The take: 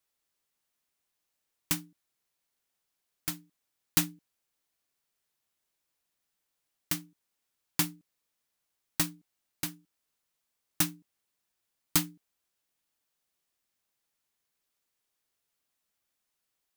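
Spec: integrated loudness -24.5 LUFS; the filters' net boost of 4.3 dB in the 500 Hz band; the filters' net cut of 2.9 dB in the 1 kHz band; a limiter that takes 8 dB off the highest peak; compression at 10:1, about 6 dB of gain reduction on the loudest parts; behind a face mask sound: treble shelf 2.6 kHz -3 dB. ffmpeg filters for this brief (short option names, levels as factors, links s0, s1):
-af "equalizer=f=500:t=o:g=8.5,equalizer=f=1000:t=o:g=-5.5,acompressor=threshold=0.0447:ratio=10,alimiter=limit=0.126:level=0:latency=1,highshelf=f=2600:g=-3,volume=8.41"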